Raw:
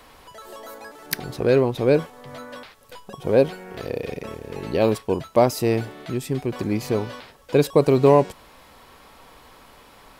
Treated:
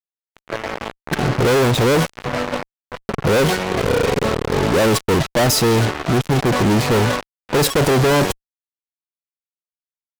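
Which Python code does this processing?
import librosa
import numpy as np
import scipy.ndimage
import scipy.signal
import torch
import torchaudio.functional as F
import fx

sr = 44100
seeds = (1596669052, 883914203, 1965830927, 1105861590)

y = fx.env_lowpass(x, sr, base_hz=660.0, full_db=-14.5)
y = fx.fuzz(y, sr, gain_db=43.0, gate_db=-38.0)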